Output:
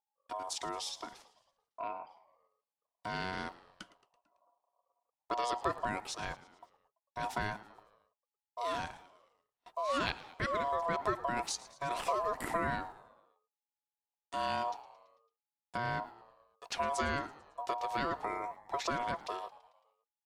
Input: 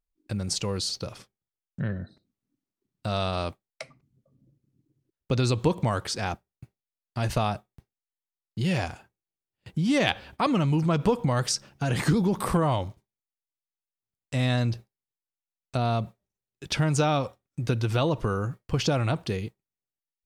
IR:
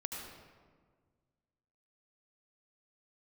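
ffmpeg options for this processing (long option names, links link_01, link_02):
-filter_complex "[0:a]asplit=6[link_01][link_02][link_03][link_04][link_05][link_06];[link_02]adelay=111,afreqshift=-100,volume=-18.5dB[link_07];[link_03]adelay=222,afreqshift=-200,volume=-23.4dB[link_08];[link_04]adelay=333,afreqshift=-300,volume=-28.3dB[link_09];[link_05]adelay=444,afreqshift=-400,volume=-33.1dB[link_10];[link_06]adelay=555,afreqshift=-500,volume=-38dB[link_11];[link_01][link_07][link_08][link_09][link_10][link_11]amix=inputs=6:normalize=0,aeval=exprs='val(0)*sin(2*PI*840*n/s)':channel_layout=same,volume=-7.5dB"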